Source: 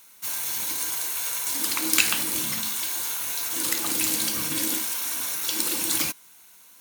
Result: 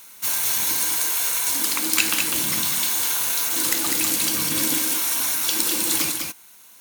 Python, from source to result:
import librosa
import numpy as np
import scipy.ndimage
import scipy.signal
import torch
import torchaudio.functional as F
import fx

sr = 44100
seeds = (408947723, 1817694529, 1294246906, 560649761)

y = fx.rider(x, sr, range_db=4, speed_s=0.5)
y = y + 10.0 ** (-5.0 / 20.0) * np.pad(y, (int(201 * sr / 1000.0), 0))[:len(y)]
y = F.gain(torch.from_numpy(y), 3.5).numpy()